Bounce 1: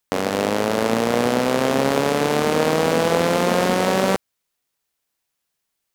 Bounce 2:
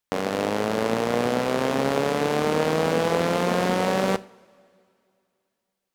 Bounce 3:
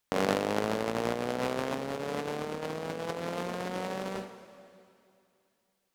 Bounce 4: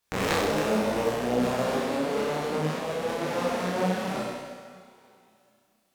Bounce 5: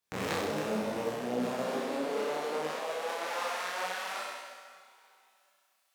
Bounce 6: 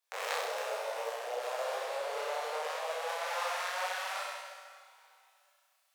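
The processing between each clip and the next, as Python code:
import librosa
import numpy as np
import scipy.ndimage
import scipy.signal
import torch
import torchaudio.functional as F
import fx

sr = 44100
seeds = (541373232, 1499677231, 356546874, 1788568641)

y1 = fx.high_shelf(x, sr, hz=5800.0, db=-5.0)
y1 = fx.rev_double_slope(y1, sr, seeds[0], early_s=0.39, late_s=2.6, knee_db=-19, drr_db=15.0)
y1 = y1 * 10.0 ** (-4.0 / 20.0)
y2 = fx.over_compress(y1, sr, threshold_db=-28.0, ratio=-0.5)
y2 = y2 * 10.0 ** (-3.0 / 20.0)
y3 = fx.cheby_harmonics(y2, sr, harmonics=(3, 7), levels_db=(-6, -26), full_scale_db=-9.0)
y3 = fx.room_flutter(y3, sr, wall_m=5.6, rt60_s=1.2)
y3 = fx.detune_double(y3, sr, cents=39)
y3 = y3 * 10.0 ** (7.5 / 20.0)
y4 = fx.filter_sweep_highpass(y3, sr, from_hz=100.0, to_hz=1100.0, start_s=0.82, end_s=3.65, q=0.9)
y4 = fx.rider(y4, sr, range_db=5, speed_s=2.0)
y4 = y4 * 10.0 ** (-5.5 / 20.0)
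y5 = scipy.signal.sosfilt(scipy.signal.butter(8, 500.0, 'highpass', fs=sr, output='sos'), y4)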